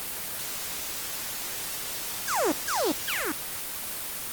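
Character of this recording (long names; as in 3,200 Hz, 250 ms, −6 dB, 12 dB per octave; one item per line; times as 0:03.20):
phaser sweep stages 4, 0.5 Hz, lowest notch 530–3,800 Hz
a quantiser's noise floor 6 bits, dither triangular
Opus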